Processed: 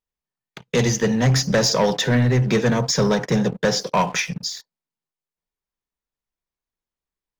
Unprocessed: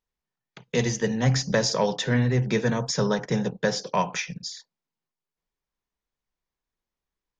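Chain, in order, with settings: sample leveller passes 2

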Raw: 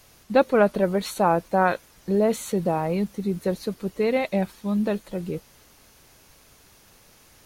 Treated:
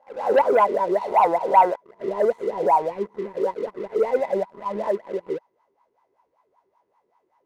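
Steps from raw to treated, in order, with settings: spectral swells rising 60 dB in 0.60 s; wah 5.2 Hz 370–1000 Hz, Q 8.7; sample leveller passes 2; small resonant body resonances 980/2000 Hz, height 13 dB, ringing for 40 ms; gain +3 dB

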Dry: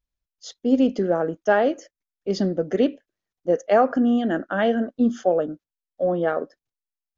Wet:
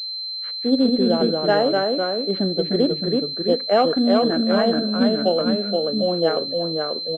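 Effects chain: echo 0.341 s -24 dB; echoes that change speed 0.161 s, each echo -1 st, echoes 2; pulse-width modulation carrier 4100 Hz

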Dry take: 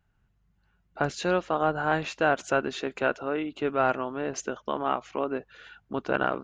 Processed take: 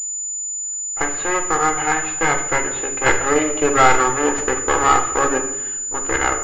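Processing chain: minimum comb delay 2.4 ms; bell 1500 Hz +8 dB 2.3 oct; 3.06–5.38 sample leveller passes 2; shoebox room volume 230 m³, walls mixed, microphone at 0.62 m; pulse-width modulation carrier 7000 Hz; gain +2 dB

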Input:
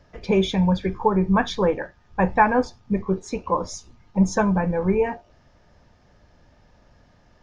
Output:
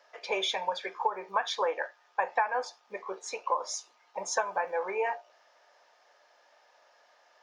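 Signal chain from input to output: HPF 580 Hz 24 dB/oct; compressor 8:1, threshold -24 dBFS, peak gain reduction 12.5 dB

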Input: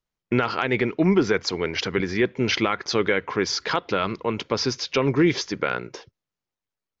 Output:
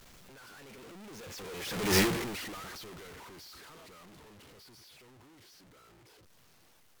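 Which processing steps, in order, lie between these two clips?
infinite clipping; Doppler pass-by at 1.98, 26 m/s, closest 1.3 m; gain +2.5 dB

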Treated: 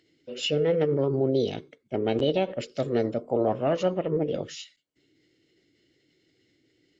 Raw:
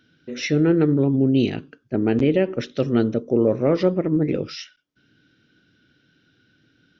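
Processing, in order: small resonant body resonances 2200 Hz, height 16 dB, ringing for 55 ms; formant shift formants +5 st; gain -6 dB

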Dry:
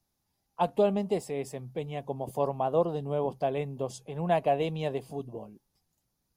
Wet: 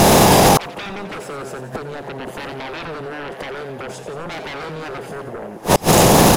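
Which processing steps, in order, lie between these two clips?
per-bin compression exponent 0.6; 3.05–3.7 low shelf 170 Hz -10.5 dB; wow and flutter 23 cents; dynamic EQ 380 Hz, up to +6 dB, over -39 dBFS, Q 1.5; sine folder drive 14 dB, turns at -10.5 dBFS; compressor 16:1, threshold -30 dBFS, peak gain reduction 18 dB; on a send: frequency-shifting echo 88 ms, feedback 59%, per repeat +120 Hz, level -10 dB; on the sum: flipped gate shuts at -26 dBFS, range -33 dB; maximiser +35.5 dB; gain -1 dB

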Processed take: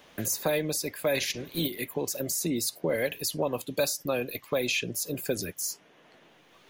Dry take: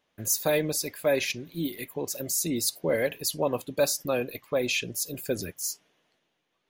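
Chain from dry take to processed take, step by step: 1.14–1.67 spectral limiter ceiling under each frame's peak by 14 dB; three-band squash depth 70%; gain -1.5 dB

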